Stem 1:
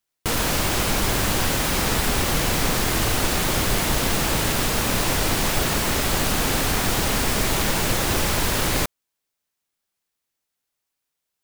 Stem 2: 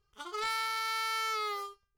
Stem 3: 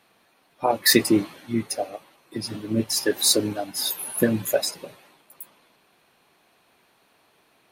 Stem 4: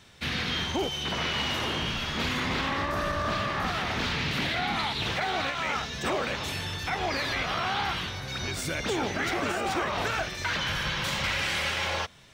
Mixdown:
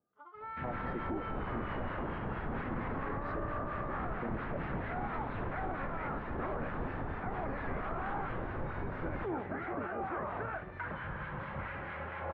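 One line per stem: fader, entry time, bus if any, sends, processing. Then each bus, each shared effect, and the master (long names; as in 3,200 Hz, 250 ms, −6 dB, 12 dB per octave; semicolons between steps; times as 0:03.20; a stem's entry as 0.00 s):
−12.5 dB, 0.40 s, no send, bit-depth reduction 6 bits, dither triangular
−8.0 dB, 0.00 s, no send, high-pass filter 450 Hz; comb filter 6.7 ms, depth 52%
−14.5 dB, 0.00 s, no send, adaptive Wiener filter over 41 samples
−5.0 dB, 0.35 s, no send, no processing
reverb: not used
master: low-pass filter 1,600 Hz 24 dB per octave; two-band tremolo in antiphase 4.4 Hz, depth 50%, crossover 1,100 Hz; brickwall limiter −28 dBFS, peak gain reduction 8.5 dB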